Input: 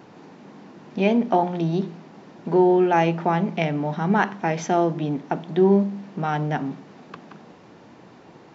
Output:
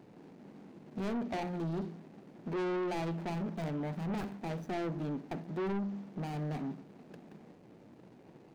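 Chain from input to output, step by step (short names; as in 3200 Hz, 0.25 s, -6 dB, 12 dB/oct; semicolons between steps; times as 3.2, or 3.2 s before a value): median filter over 41 samples; soft clip -25 dBFS, distortion -6 dB; gain -7 dB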